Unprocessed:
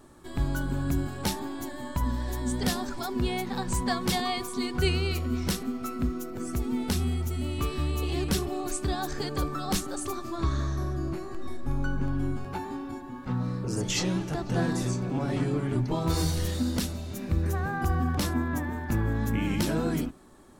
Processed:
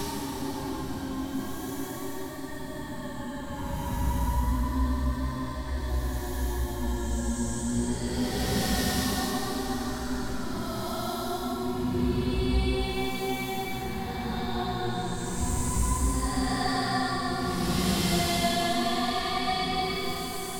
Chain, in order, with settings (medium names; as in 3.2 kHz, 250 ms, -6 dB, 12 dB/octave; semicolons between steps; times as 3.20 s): wow and flutter 86 cents; two-band feedback delay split 370 Hz, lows 272 ms, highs 94 ms, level -10.5 dB; Paulstretch 6.6×, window 0.25 s, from 1.36 s